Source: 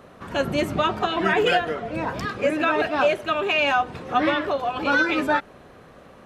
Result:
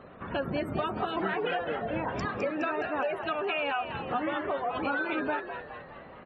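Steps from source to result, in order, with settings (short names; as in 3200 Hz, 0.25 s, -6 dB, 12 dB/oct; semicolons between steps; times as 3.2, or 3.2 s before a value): spectral gate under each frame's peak -25 dB strong; dynamic EQ 4700 Hz, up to -6 dB, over -40 dBFS, Q 0.82; compressor, threshold -26 dBFS, peak gain reduction 10 dB; on a send: frequency-shifting echo 0.208 s, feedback 53%, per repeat +89 Hz, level -9 dB; on the sum: gain -2 dB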